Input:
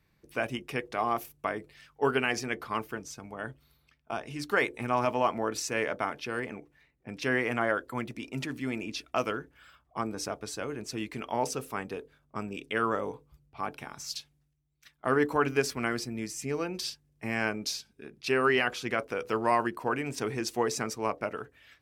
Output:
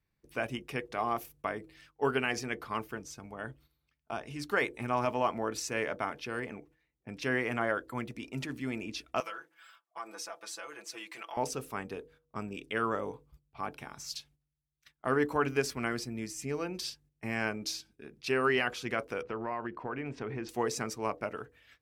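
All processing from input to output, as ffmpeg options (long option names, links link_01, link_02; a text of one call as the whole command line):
ffmpeg -i in.wav -filter_complex "[0:a]asettb=1/sr,asplit=3[link_01][link_02][link_03];[link_01]atrim=end=9.204[link_04];[link_02]atrim=start=9.2:end=11.37,asetpts=PTS-STARTPTS,afade=type=in:duration=0.004:curve=qsin,afade=type=out:start_time=2.166:duration=0.004:curve=qsin,highpass=730,acompressor=threshold=-39dB:ratio=2.5:attack=3.2:release=140:knee=1:detection=peak,aecho=1:1:6:0.99,atrim=end_sample=95697[link_05];[link_03]atrim=start=11.366[link_06];[link_04][link_05]acrossfade=duration=0.004:curve1=hsin:curve2=qsin[link_07];[link_07][link_06]acrossfade=duration=0.004:curve1=qsin:curve2=hsin,asettb=1/sr,asplit=3[link_08][link_09][link_10];[link_08]atrim=end=19.224[link_11];[link_09]atrim=start=19.22:end=20.49,asetpts=PTS-STARTPTS,afade=type=in:duration=0.004:curve=qsin,afade=type=out:start_time=1.266:duration=0.004:curve=qsin,lowpass=2500,acompressor=threshold=-30dB:ratio=3:attack=3.2:release=140:knee=1:detection=peak[link_12];[link_10]atrim=start=20.486[link_13];[link_11][link_12]acrossfade=duration=0.004:curve1=hsin:curve2=qsin[link_14];[link_14][link_13]acrossfade=duration=0.004:curve1=qsin:curve2=hsin,agate=range=-10dB:threshold=-57dB:ratio=16:detection=peak,lowshelf=frequency=76:gain=5.5,bandreject=frequency=160.1:width_type=h:width=4,bandreject=frequency=320.2:width_type=h:width=4,bandreject=frequency=480.3:width_type=h:width=4,volume=-3dB" out.wav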